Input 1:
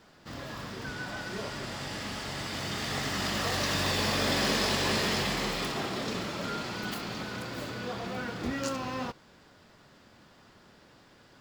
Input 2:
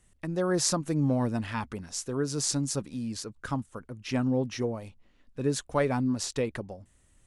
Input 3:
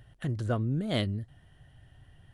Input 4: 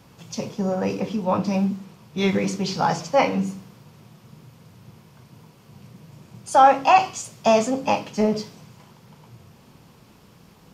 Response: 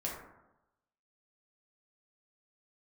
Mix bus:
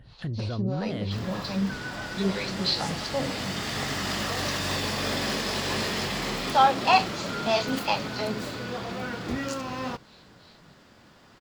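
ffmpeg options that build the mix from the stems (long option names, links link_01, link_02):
-filter_complex "[0:a]alimiter=limit=-20.5dB:level=0:latency=1:release=373,adelay=850,volume=2.5dB[link_01];[1:a]adelay=2200,volume=-16dB[link_02];[2:a]bass=frequency=250:gain=3,treble=frequency=4000:gain=-9,alimiter=level_in=1dB:limit=-24dB:level=0:latency=1,volume=-1dB,volume=1dB[link_03];[3:a]acrossover=split=500[link_04][link_05];[link_04]aeval=exprs='val(0)*(1-1/2+1/2*cos(2*PI*3.1*n/s))':channel_layout=same[link_06];[link_05]aeval=exprs='val(0)*(1-1/2-1/2*cos(2*PI*3.1*n/s))':channel_layout=same[link_07];[link_06][link_07]amix=inputs=2:normalize=0,lowpass=frequency=4100:width_type=q:width=9.4,volume=-4dB[link_08];[link_01][link_02][link_03][link_08]amix=inputs=4:normalize=0"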